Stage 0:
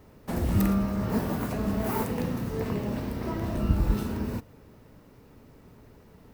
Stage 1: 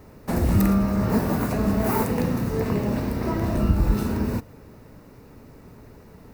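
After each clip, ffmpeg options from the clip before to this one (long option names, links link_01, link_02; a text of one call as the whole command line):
ffmpeg -i in.wav -filter_complex "[0:a]equalizer=frequency=3200:width=5.5:gain=-7.5,asplit=2[link_01][link_02];[link_02]alimiter=limit=-18.5dB:level=0:latency=1:release=166,volume=0.5dB[link_03];[link_01][link_03]amix=inputs=2:normalize=0" out.wav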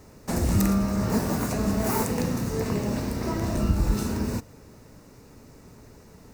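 ffmpeg -i in.wav -af "equalizer=frequency=6800:width=0.91:gain=11,volume=-3dB" out.wav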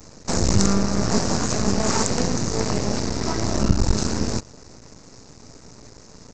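ffmpeg -i in.wav -af "aresample=16000,aeval=exprs='max(val(0),0)':channel_layout=same,aresample=44100,aexciter=amount=3.3:drive=4.4:freq=4300,volume=7.5dB" out.wav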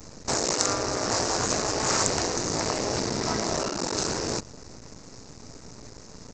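ffmpeg -i in.wav -af "afftfilt=real='re*lt(hypot(re,im),0.316)':imag='im*lt(hypot(re,im),0.316)':win_size=1024:overlap=0.75" out.wav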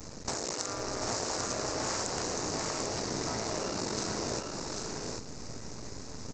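ffmpeg -i in.wav -filter_complex "[0:a]acompressor=threshold=-32dB:ratio=6,asplit=2[link_01][link_02];[link_02]aecho=0:1:741|794:0.422|0.596[link_03];[link_01][link_03]amix=inputs=2:normalize=0" out.wav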